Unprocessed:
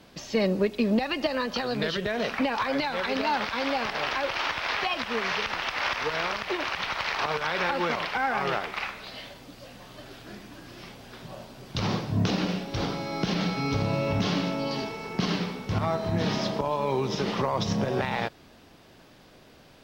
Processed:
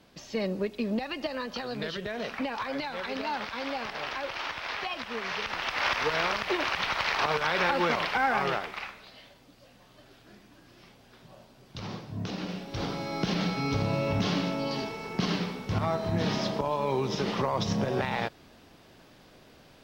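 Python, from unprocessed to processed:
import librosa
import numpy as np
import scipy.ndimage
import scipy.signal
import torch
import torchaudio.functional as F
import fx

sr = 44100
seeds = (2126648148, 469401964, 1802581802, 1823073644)

y = fx.gain(x, sr, db=fx.line((5.22, -6.0), (5.91, 1.0), (8.35, 1.0), (9.15, -10.5), (12.17, -10.5), (13.02, -1.5)))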